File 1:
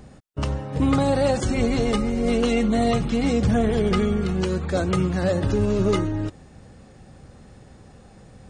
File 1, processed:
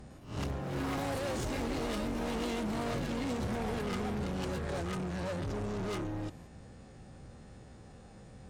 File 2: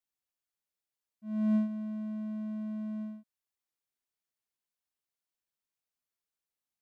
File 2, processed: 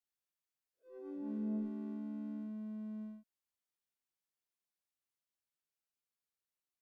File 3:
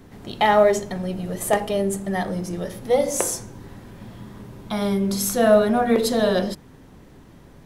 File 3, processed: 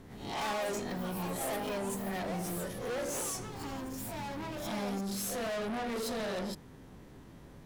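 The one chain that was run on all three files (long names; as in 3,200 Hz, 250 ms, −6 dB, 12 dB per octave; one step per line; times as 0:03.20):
peak hold with a rise ahead of every peak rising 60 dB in 0.37 s
tube saturation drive 28 dB, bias 0.2
delay with pitch and tempo change per echo 106 ms, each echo +5 semitones, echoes 3, each echo −6 dB
level −6 dB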